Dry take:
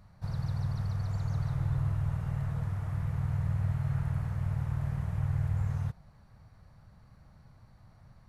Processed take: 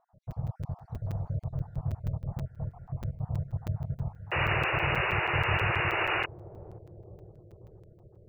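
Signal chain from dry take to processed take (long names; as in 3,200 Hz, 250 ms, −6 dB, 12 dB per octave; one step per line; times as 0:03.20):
time-frequency cells dropped at random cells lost 50%
drawn EQ curve 330 Hz 0 dB, 650 Hz +7 dB, 2,500 Hz −25 dB
sound drawn into the spectrogram noise, 0:04.31–0:06.26, 310–2,900 Hz −29 dBFS
bucket-brigade delay 530 ms, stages 2,048, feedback 69%, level −14 dB
regular buffer underruns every 0.16 s, samples 256, zero, from 0:00.31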